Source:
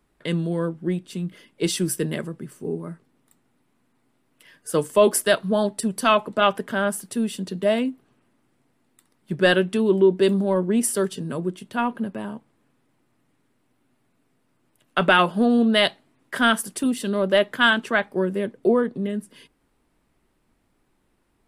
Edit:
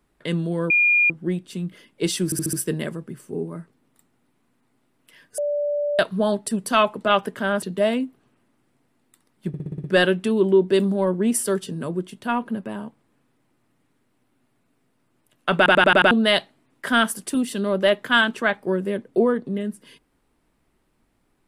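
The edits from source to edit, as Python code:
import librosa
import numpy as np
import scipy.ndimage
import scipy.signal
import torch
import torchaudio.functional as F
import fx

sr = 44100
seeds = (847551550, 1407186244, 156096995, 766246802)

y = fx.edit(x, sr, fx.insert_tone(at_s=0.7, length_s=0.4, hz=2420.0, db=-14.0),
    fx.stutter(start_s=1.85, slice_s=0.07, count=5),
    fx.bleep(start_s=4.7, length_s=0.61, hz=584.0, db=-20.5),
    fx.cut(start_s=6.94, length_s=0.53),
    fx.stutter(start_s=9.33, slice_s=0.06, count=7),
    fx.stutter_over(start_s=15.06, slice_s=0.09, count=6), tone=tone)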